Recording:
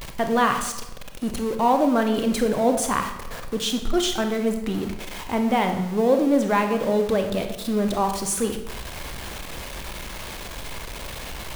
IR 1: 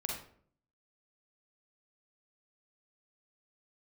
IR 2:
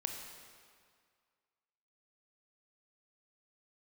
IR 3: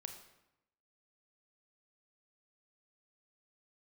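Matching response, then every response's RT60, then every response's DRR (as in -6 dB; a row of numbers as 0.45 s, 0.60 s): 3; 0.55 s, 2.0 s, 0.90 s; -1.0 dB, 3.0 dB, 5.5 dB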